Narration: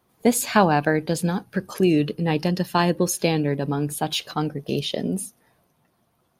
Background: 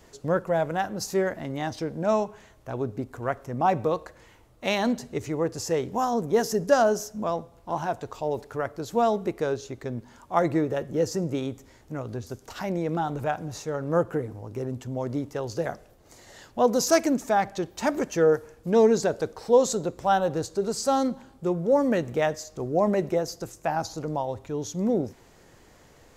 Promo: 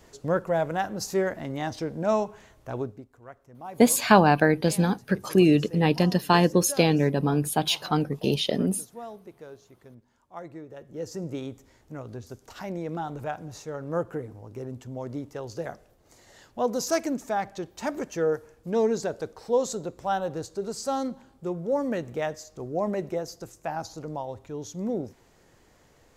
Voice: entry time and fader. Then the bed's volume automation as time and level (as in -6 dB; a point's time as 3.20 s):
3.55 s, +0.5 dB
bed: 2.80 s -0.5 dB
3.09 s -17.5 dB
10.65 s -17.5 dB
11.26 s -5 dB